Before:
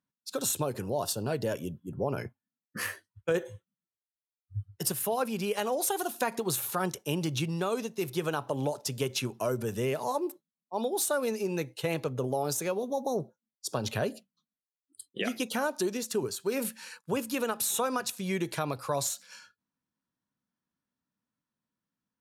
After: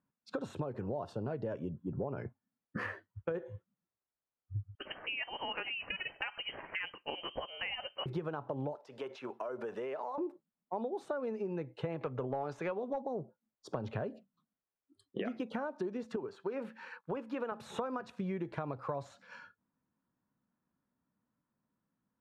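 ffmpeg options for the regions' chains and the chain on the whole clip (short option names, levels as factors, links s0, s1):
-filter_complex "[0:a]asettb=1/sr,asplit=3[s0][s1][s2];[s0]atrim=end=4.754[s3];[s1]atrim=start=4.75:end=8.06,asetpts=PTS-STARTPTS,afade=t=in:d=0.004:c=qsin,afade=t=out:st=3.306:d=0.004:c=qsin,highpass=330,lowpass=f=2800:t=q:w=0.5098,lowpass=f=2800:t=q:w=0.6013,lowpass=f=2800:t=q:w=0.9,lowpass=f=2800:t=q:w=2.563,afreqshift=-3300[s4];[s2]atrim=start=8.056[s5];[s3][s4]acrossfade=d=0.004:c1=hsin:c2=qsin[s6];[s6][s5]acrossfade=d=0.004:c1=qsin:c2=hsin,asettb=1/sr,asplit=3[s7][s8][s9];[s7]atrim=end=8.754[s10];[s8]atrim=start=8.75:end=10.18,asetpts=PTS-STARTPTS,afade=t=in:d=0.004:c=qsin,afade=t=out:st=1.426:d=0.004:c=qsin,highpass=540,acompressor=threshold=0.0112:ratio=6:attack=3.2:release=140:knee=1:detection=peak[s11];[s9]atrim=start=10.176[s12];[s10][s11]acrossfade=d=0.004:c1=hsin:c2=qsin[s13];[s13][s12]acrossfade=d=0.004:c1=qsin:c2=hsin,asettb=1/sr,asplit=3[s14][s15][s16];[s14]atrim=end=12.014[s17];[s15]atrim=start=12.01:end=13.02,asetpts=PTS-STARTPTS,afade=t=in:d=0.004:c=qsin,afade=t=out:st=1.006:d=0.004:c=qsin,equalizer=f=2200:w=0.4:g=11,acompressor=mode=upward:threshold=0.00794:ratio=2.5:attack=3.2:release=140:knee=2.83:detection=peak,aeval=exprs='clip(val(0),-1,0.0891)':c=same[s18];[s16]atrim=start=13.016[s19];[s17][s18]acrossfade=d=0.004:c1=hsin:c2=qsin[s20];[s20][s19]acrossfade=d=0.004:c1=qsin:c2=hsin,asettb=1/sr,asplit=3[s21][s22][s23];[s21]atrim=end=16.164[s24];[s22]atrim=start=16.16:end=17.52,asetpts=PTS-STARTPTS,afade=t=in:d=0.004:c=qsin,afade=t=out:st=1.356:d=0.004:c=qsin,highpass=f=510:p=1,highshelf=f=4700:g=-7.5[s25];[s23]atrim=start=17.516[s26];[s24][s25]acrossfade=d=0.004:c1=hsin:c2=qsin[s27];[s27][s26]acrossfade=d=0.004:c1=qsin:c2=hsin,lowpass=1400,acompressor=threshold=0.00891:ratio=6,volume=2"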